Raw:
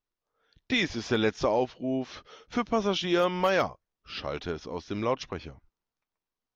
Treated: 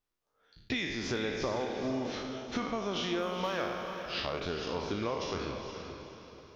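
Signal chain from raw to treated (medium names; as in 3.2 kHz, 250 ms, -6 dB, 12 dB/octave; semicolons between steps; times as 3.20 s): spectral sustain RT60 0.77 s; compression, threshold -31 dBFS, peak gain reduction 12.5 dB; echo that smears into a reverb 454 ms, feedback 41%, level -7 dB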